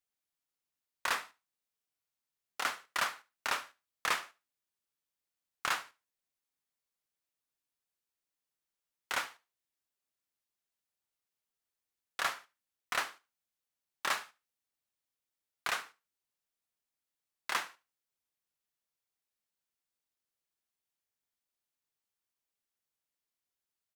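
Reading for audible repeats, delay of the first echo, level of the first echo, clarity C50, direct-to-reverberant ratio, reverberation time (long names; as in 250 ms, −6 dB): 2, 73 ms, −21.0 dB, no reverb audible, no reverb audible, no reverb audible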